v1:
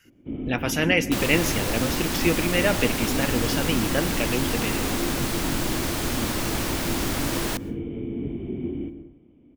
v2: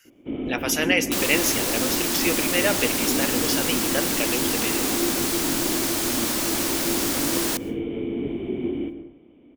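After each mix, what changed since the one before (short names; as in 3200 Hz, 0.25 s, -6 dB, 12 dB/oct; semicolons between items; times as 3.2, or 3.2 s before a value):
first sound +8.0 dB; master: add tone controls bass -13 dB, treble +7 dB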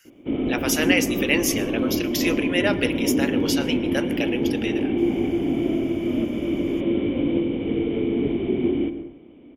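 first sound +5.0 dB; second sound: muted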